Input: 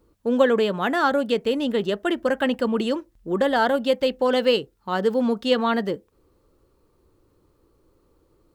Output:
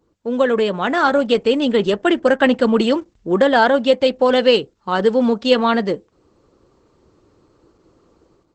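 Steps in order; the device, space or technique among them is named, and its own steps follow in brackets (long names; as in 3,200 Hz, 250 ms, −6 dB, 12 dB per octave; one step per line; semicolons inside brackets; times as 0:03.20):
video call (high-pass filter 110 Hz 6 dB per octave; automatic gain control gain up to 10 dB; Opus 12 kbit/s 48,000 Hz)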